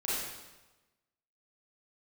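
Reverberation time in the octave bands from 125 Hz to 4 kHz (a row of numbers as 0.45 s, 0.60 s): 1.2 s, 1.1 s, 1.1 s, 1.1 s, 1.0 s, 1.0 s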